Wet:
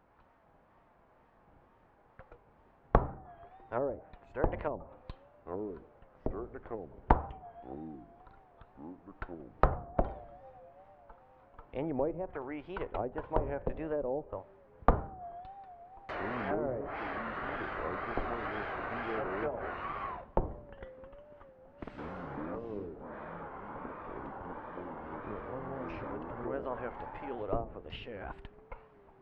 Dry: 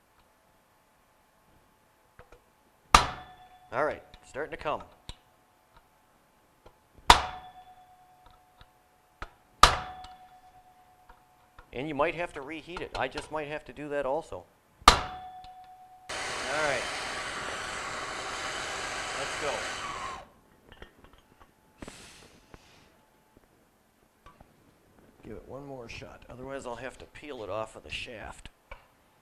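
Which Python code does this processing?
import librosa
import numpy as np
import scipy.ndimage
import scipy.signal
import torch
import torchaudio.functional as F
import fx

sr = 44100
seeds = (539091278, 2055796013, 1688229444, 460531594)

y = scipy.signal.sosfilt(scipy.signal.butter(2, 1600.0, 'lowpass', fs=sr, output='sos'), x)
y = fx.env_lowpass_down(y, sr, base_hz=510.0, full_db=-28.5)
y = fx.wow_flutter(y, sr, seeds[0], rate_hz=2.1, depth_cents=120.0)
y = fx.echo_pitch(y, sr, ms=504, semitones=-5, count=2, db_per_echo=-6.0)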